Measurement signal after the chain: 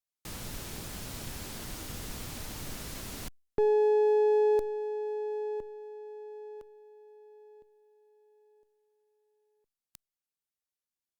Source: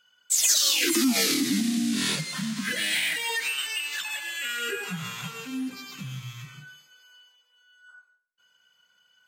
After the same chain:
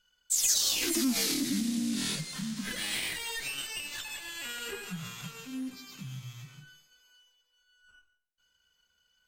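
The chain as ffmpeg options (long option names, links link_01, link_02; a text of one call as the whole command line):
ffmpeg -i in.wav -filter_complex "[0:a]acrossover=split=370|3500[link_01][link_02][link_03];[link_02]aeval=exprs='max(val(0),0)':channel_layout=same[link_04];[link_01][link_04][link_03]amix=inputs=3:normalize=0,volume=-4.5dB" -ar 48000 -c:a libopus -b:a 128k out.opus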